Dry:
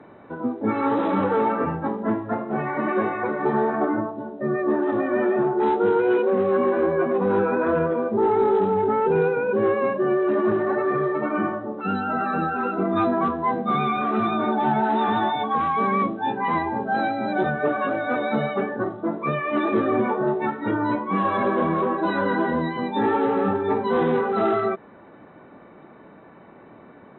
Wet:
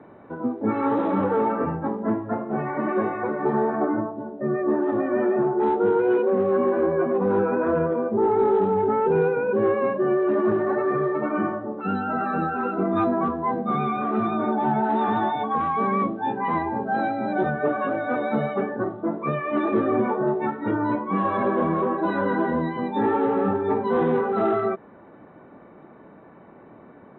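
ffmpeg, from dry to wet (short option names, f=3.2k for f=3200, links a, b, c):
-af "asetnsamples=n=441:p=0,asendcmd='1.02 lowpass f 1300;8.39 lowpass f 1900;13.04 lowpass f 1200;14.89 lowpass f 1600',lowpass=f=1.7k:p=1"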